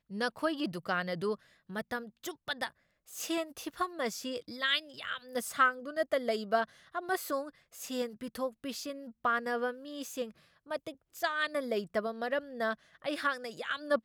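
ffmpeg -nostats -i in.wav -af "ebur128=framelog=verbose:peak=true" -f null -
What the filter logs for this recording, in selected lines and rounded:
Integrated loudness:
  I:         -34.7 LUFS
  Threshold: -44.9 LUFS
Loudness range:
  LRA:         4.7 LU
  Threshold: -54.9 LUFS
  LRA low:   -37.1 LUFS
  LRA high:  -32.4 LUFS
True peak:
  Peak:      -14.2 dBFS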